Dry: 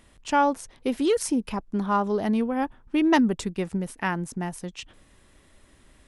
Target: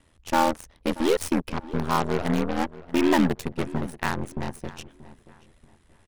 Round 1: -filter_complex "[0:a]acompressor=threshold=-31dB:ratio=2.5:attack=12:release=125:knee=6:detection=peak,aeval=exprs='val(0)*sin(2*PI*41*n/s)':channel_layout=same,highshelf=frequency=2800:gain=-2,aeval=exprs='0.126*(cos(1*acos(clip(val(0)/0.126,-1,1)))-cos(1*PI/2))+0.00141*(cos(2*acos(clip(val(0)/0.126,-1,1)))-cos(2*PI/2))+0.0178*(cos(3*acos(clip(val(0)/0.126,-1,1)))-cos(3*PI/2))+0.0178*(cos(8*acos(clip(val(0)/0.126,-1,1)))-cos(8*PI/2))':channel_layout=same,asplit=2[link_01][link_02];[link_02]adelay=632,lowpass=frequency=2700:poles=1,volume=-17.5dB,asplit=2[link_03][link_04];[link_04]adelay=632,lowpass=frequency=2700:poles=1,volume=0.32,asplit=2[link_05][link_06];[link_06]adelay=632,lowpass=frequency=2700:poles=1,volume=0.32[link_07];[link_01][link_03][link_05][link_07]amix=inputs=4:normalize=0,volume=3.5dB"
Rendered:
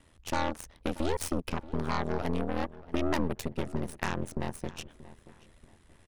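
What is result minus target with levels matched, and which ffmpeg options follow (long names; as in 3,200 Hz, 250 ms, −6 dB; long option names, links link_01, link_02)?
downward compressor: peak gain reduction +10.5 dB
-filter_complex "[0:a]aeval=exprs='val(0)*sin(2*PI*41*n/s)':channel_layout=same,highshelf=frequency=2800:gain=-2,aeval=exprs='0.126*(cos(1*acos(clip(val(0)/0.126,-1,1)))-cos(1*PI/2))+0.00141*(cos(2*acos(clip(val(0)/0.126,-1,1)))-cos(2*PI/2))+0.0178*(cos(3*acos(clip(val(0)/0.126,-1,1)))-cos(3*PI/2))+0.0178*(cos(8*acos(clip(val(0)/0.126,-1,1)))-cos(8*PI/2))':channel_layout=same,asplit=2[link_01][link_02];[link_02]adelay=632,lowpass=frequency=2700:poles=1,volume=-17.5dB,asplit=2[link_03][link_04];[link_04]adelay=632,lowpass=frequency=2700:poles=1,volume=0.32,asplit=2[link_05][link_06];[link_06]adelay=632,lowpass=frequency=2700:poles=1,volume=0.32[link_07];[link_01][link_03][link_05][link_07]amix=inputs=4:normalize=0,volume=3.5dB"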